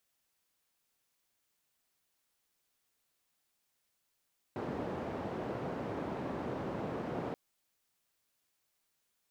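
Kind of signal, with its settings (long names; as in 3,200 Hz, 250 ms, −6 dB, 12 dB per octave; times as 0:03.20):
band-limited noise 110–560 Hz, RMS −38.5 dBFS 2.78 s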